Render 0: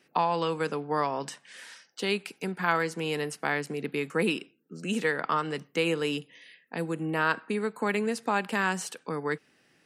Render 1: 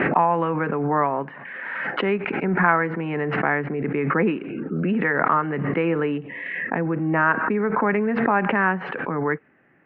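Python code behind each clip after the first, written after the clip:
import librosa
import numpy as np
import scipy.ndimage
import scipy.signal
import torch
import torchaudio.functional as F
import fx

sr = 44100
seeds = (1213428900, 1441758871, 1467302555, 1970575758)

y = scipy.signal.sosfilt(scipy.signal.butter(6, 2100.0, 'lowpass', fs=sr, output='sos'), x)
y = fx.notch(y, sr, hz=470.0, q=12.0)
y = fx.pre_swell(y, sr, db_per_s=27.0)
y = y * 10.0 ** (7.0 / 20.0)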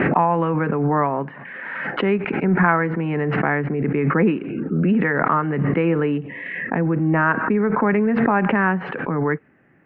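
y = fx.low_shelf(x, sr, hz=250.0, db=8.5)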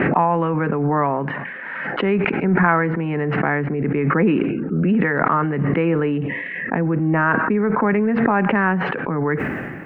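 y = fx.sustainer(x, sr, db_per_s=31.0)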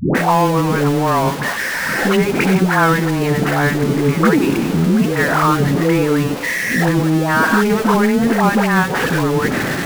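y = x + 0.5 * 10.0 ** (-18.5 / 20.0) * np.sign(x)
y = fx.quant_companded(y, sr, bits=6)
y = fx.dispersion(y, sr, late='highs', ms=150.0, hz=490.0)
y = y * 10.0 ** (1.0 / 20.0)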